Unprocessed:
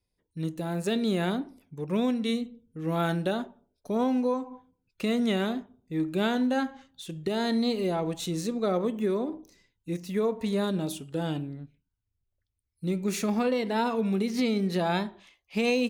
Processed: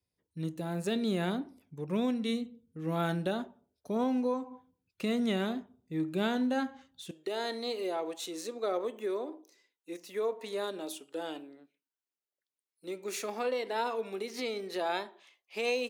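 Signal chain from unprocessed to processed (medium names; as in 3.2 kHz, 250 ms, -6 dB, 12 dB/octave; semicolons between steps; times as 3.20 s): high-pass 59 Hz 24 dB/octave, from 7.11 s 340 Hz; trim -4 dB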